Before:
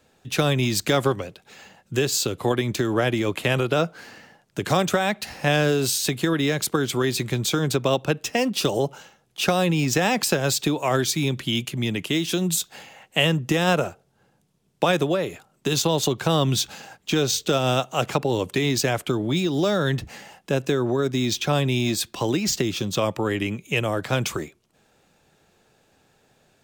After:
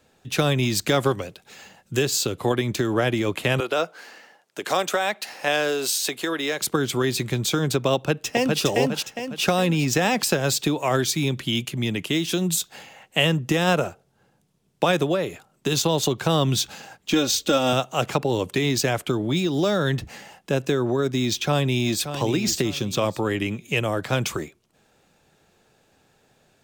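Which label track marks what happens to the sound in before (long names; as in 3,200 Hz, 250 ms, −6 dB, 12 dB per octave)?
1.060000	2.030000	high-shelf EQ 4,600 Hz +5 dB
3.600000	6.610000	high-pass filter 410 Hz
7.950000	8.610000	delay throw 410 ms, feedback 45%, level −2 dB
17.130000	17.730000	comb filter 3.6 ms
21.340000	22.100000	delay throw 580 ms, feedback 30%, level −10 dB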